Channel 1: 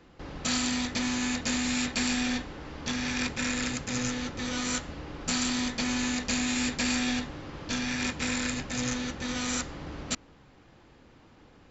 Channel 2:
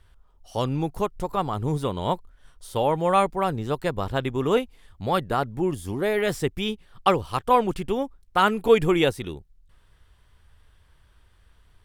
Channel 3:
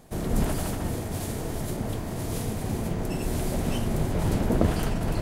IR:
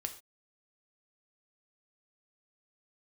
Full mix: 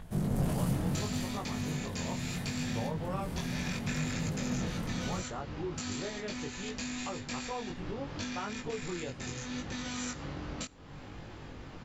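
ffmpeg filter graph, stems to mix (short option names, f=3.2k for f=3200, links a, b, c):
-filter_complex "[0:a]highpass=f=140:p=1,lowshelf=f=210:g=11,acompressor=threshold=-31dB:ratio=6,adelay=500,volume=-2dB,asplit=2[a][b];[b]volume=-14dB[c];[1:a]lowpass=2.8k,equalizer=f=1.5k:w=0.4:g=-5,volume=-8dB,asplit=3[d][e][f];[d]atrim=end=3.39,asetpts=PTS-STARTPTS,afade=t=out:st=3.386:d=0.004:c=hsin[g];[e]atrim=start=3.39:end=4.83,asetpts=PTS-STARTPTS,volume=0[h];[f]atrim=start=4.83,asetpts=PTS-STARTPTS,afade=t=in:d=0.004:c=hsin[i];[g][h][i]concat=n=3:v=0:a=1[j];[2:a]equalizer=f=170:t=o:w=1.1:g=13.5,asoftclip=type=tanh:threshold=-18.5dB,volume=-2.5dB,afade=t=out:st=0.76:d=0.57:silence=0.446684[k];[a][j]amix=inputs=2:normalize=0,acompressor=mode=upward:threshold=-29dB:ratio=2.5,alimiter=limit=-23dB:level=0:latency=1:release=239,volume=0dB[l];[3:a]atrim=start_sample=2205[m];[c][m]afir=irnorm=-1:irlink=0[n];[k][l][n]amix=inputs=3:normalize=0,equalizer=f=300:t=o:w=1.7:g=-3,flanger=delay=19:depth=4.3:speed=0.71"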